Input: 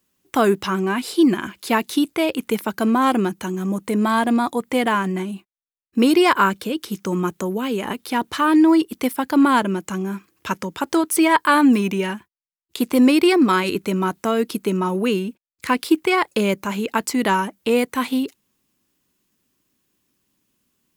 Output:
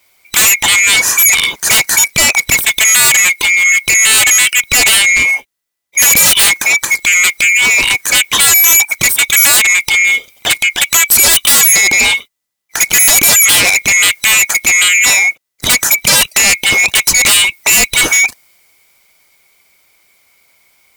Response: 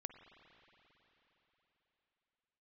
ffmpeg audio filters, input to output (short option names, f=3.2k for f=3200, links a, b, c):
-af "afftfilt=real='real(if(lt(b,920),b+92*(1-2*mod(floor(b/92),2)),b),0)':imag='imag(if(lt(b,920),b+92*(1-2*mod(floor(b/92),2)),b),0)':win_size=2048:overlap=0.75,aeval=exprs='0.668*sin(PI/2*7.08*val(0)/0.668)':c=same,adynamicequalizer=threshold=0.1:dfrequency=3900:dqfactor=0.7:tfrequency=3900:tqfactor=0.7:attack=5:release=100:ratio=0.375:range=2:mode=boostabove:tftype=highshelf,volume=-3.5dB"